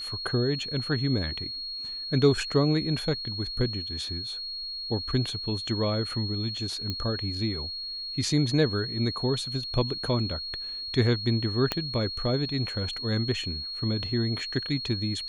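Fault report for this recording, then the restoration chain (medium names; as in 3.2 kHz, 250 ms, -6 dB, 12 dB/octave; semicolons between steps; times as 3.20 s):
whine 4.3 kHz -33 dBFS
6.90 s: pop -17 dBFS
11.72 s: pop -11 dBFS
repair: de-click; band-stop 4.3 kHz, Q 30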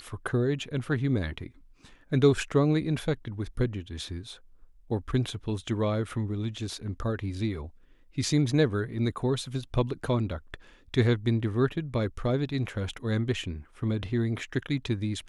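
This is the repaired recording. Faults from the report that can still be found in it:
11.72 s: pop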